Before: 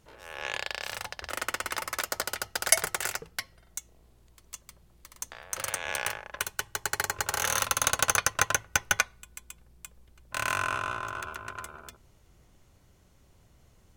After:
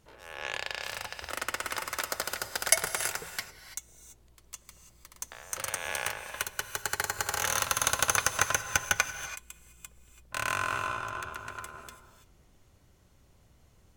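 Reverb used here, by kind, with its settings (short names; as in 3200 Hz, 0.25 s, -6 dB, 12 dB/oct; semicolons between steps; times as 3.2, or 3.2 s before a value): non-linear reverb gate 0.36 s rising, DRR 10 dB; gain -1.5 dB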